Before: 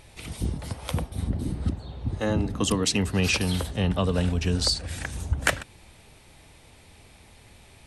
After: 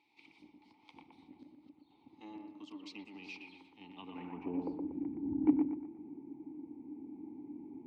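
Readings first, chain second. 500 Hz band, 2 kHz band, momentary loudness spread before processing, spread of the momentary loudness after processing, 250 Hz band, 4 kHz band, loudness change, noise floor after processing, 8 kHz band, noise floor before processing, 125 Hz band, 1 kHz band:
−17.0 dB, −24.0 dB, 10 LU, 25 LU, −7.0 dB, −28.5 dB, −13.0 dB, −68 dBFS, below −35 dB, −53 dBFS, −29.5 dB, −17.0 dB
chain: tilt shelving filter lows +9 dB, about 1,200 Hz
in parallel at +2 dB: downward compressor, threshold −31 dBFS, peak gain reduction 19.5 dB
on the sum: formant filter u
harmonic generator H 4 −31 dB, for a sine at −12.5 dBFS
sample-and-hold tremolo 2.1 Hz
band-pass filter sweep 4,500 Hz → 290 Hz, 0:03.89–0:04.84
on a send: bucket-brigade delay 119 ms, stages 2,048, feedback 39%, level −4.5 dB
on the sum: level +8.5 dB

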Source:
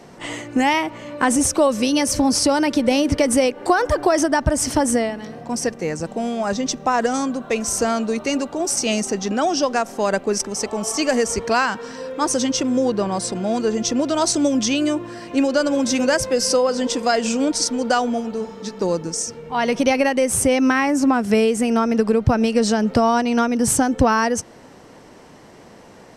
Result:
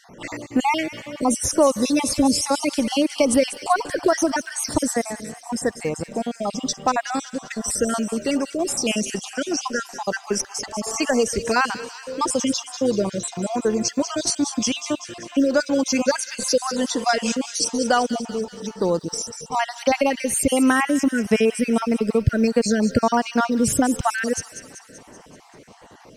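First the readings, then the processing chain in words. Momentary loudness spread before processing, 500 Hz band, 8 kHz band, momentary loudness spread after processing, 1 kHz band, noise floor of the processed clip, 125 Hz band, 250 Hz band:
7 LU, −3.0 dB, −2.0 dB, 9 LU, −2.5 dB, −46 dBFS, −2.5 dB, −2.5 dB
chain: time-frequency cells dropped at random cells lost 44%
floating-point word with a short mantissa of 6 bits
delay with a high-pass on its return 192 ms, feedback 59%, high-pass 2,500 Hz, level −9 dB

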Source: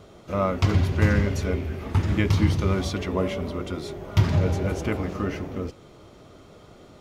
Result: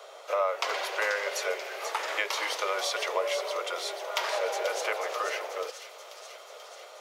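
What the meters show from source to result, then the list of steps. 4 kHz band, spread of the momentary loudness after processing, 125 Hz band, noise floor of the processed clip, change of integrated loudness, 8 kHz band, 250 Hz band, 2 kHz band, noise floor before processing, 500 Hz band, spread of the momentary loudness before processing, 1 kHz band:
+4.5 dB, 16 LU, below −40 dB, −48 dBFS, −5.5 dB, can't be measured, −27.0 dB, +2.5 dB, −50 dBFS, −1.5 dB, 10 LU, +2.5 dB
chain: Butterworth high-pass 490 Hz 48 dB per octave
downward compressor 2.5 to 1, threshold −33 dBFS, peak gain reduction 9 dB
on a send: delay with a high-pass on its return 486 ms, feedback 67%, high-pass 3,700 Hz, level −6.5 dB
on the sum: level +6 dB

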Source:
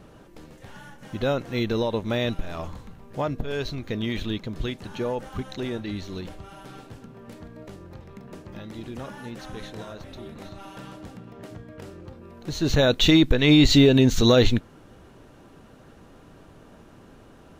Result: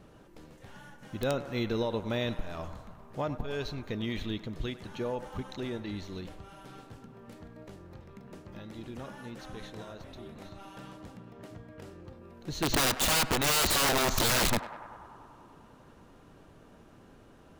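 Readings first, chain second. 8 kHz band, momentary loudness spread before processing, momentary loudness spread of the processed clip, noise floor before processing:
+5.5 dB, 24 LU, 24 LU, −50 dBFS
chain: wrap-around overflow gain 15 dB
feedback echo with a band-pass in the loop 98 ms, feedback 83%, band-pass 1,000 Hz, level −12 dB
level −6 dB

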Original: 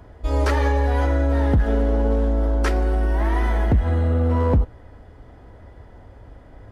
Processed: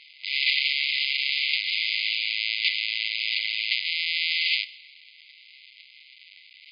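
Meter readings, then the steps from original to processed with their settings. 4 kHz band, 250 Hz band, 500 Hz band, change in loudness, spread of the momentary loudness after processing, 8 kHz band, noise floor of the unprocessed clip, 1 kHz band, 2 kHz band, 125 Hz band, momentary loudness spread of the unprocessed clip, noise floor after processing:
+20.5 dB, below −40 dB, below −40 dB, −3.0 dB, 3 LU, can't be measured, −46 dBFS, below −40 dB, +8.0 dB, below −40 dB, 2 LU, −53 dBFS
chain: each half-wave held at its own peak
four-comb reverb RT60 1.1 s, combs from 31 ms, DRR 17.5 dB
brick-wall band-pass 2,000–5,000 Hz
level +7 dB

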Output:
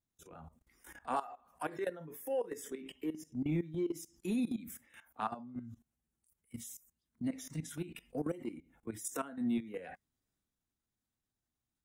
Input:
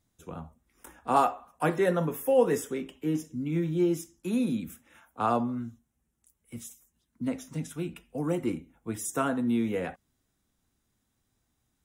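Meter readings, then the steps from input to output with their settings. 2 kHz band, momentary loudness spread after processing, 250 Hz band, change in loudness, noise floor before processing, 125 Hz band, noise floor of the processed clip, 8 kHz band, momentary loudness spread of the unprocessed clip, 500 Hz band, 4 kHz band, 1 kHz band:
−10.0 dB, 18 LU, −8.5 dB, −10.0 dB, −78 dBFS, −10.0 dB, below −85 dBFS, −6.5 dB, 18 LU, −12.0 dB, −8.0 dB, −12.0 dB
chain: downward compressor 10 to 1, threshold −37 dBFS, peak gain reduction 20 dB
noise reduction from a noise print of the clip's start 9 dB
output level in coarse steps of 20 dB
transient designer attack −9 dB, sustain +3 dB
level +9.5 dB

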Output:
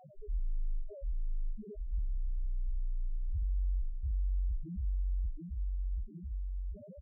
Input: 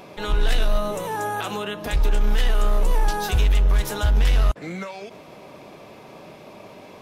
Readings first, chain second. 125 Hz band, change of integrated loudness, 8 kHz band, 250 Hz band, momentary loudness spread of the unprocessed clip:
−13.0 dB, −16.0 dB, below −40 dB, −17.5 dB, 23 LU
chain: phase distortion by the signal itself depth 0.81 ms
low-shelf EQ 200 Hz +4.5 dB
on a send: repeating echo 737 ms, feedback 38%, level −7 dB
on the sum: gain into a clipping stage and back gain 21 dB
reversed playback
downward compressor 10 to 1, threshold −36 dBFS, peak gain reduction 13.5 dB
reversed playback
low-pass filter 1,200 Hz 12 dB per octave
spectral peaks only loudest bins 1
low-shelf EQ 500 Hz +12 dB
level −3 dB

